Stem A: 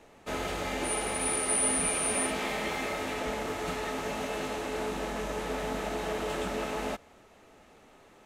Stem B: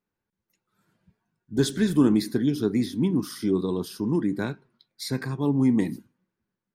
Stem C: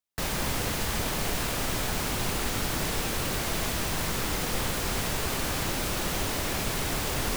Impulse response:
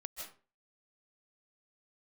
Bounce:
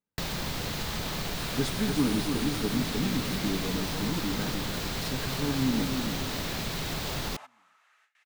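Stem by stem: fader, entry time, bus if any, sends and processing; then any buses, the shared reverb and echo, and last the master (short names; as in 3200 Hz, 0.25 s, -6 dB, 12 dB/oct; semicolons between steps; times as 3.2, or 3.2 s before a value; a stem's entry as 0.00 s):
-18.0 dB, 0.50 s, bus A, no send, no echo send, overdrive pedal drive 17 dB, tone 7500 Hz, clips at -14.5 dBFS; LFO high-pass saw up 0.62 Hz 610–2500 Hz
-6.5 dB, 0.00 s, no bus, no send, echo send -6 dB, notch comb 360 Hz
+2.5 dB, 0.00 s, bus A, no send, no echo send, fifteen-band EQ 160 Hz +6 dB, 4000 Hz +6 dB, 10000 Hz -6 dB
bus A: 0.0 dB, gate with hold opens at -55 dBFS; compressor 2.5:1, threshold -33 dBFS, peak gain reduction 8.5 dB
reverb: off
echo: feedback echo 0.299 s, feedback 40%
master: dry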